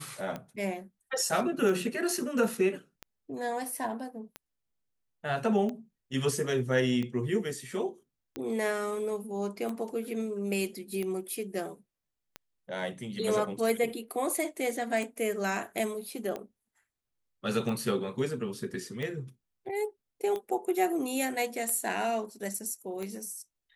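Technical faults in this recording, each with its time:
tick 45 rpm -23 dBFS

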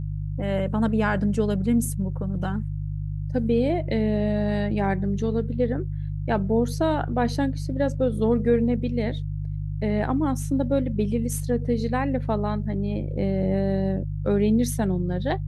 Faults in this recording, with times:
hum 50 Hz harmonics 3 -29 dBFS

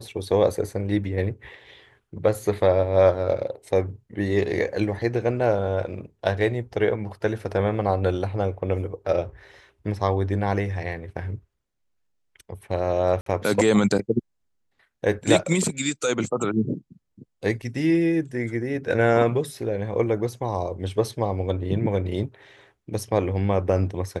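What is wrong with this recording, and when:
13.21–13.26 gap 53 ms
17.62–17.63 gap 5.5 ms

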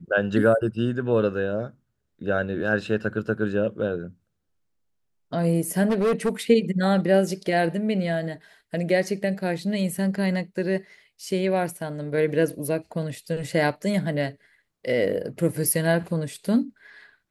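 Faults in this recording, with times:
5.89–6.29 clipped -18 dBFS

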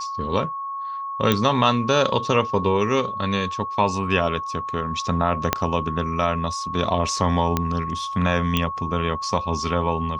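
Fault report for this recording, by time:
tone 1100 Hz -27 dBFS
1.32 pop -5 dBFS
5.53 pop -2 dBFS
7.57 pop -7 dBFS
8.57 pop -7 dBFS

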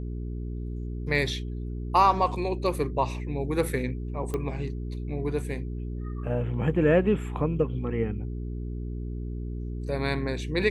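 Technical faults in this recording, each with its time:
hum 60 Hz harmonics 7 -33 dBFS
4.34 pop -18 dBFS

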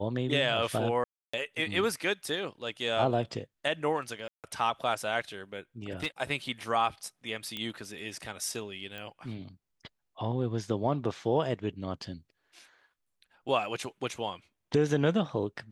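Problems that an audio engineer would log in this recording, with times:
1.04–1.33 gap 0.295 s
4.28–4.44 gap 0.158 s
5.91–6.07 clipped -26.5 dBFS
7.57 pop -21 dBFS
8.98 pop -26 dBFS

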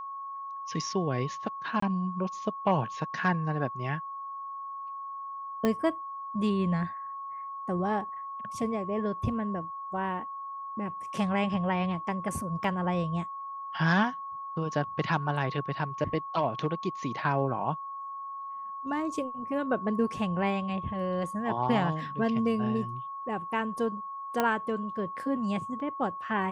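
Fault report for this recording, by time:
tone 1100 Hz -36 dBFS
1.8–1.82 gap 24 ms
5.65 pop -14 dBFS
12.64 gap 2.7 ms
24.4 pop -12 dBFS

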